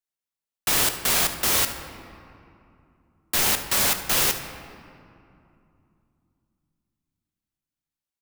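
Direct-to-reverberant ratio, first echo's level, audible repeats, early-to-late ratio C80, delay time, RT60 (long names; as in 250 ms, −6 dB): 7.0 dB, −15.5 dB, 1, 10.0 dB, 74 ms, 2.7 s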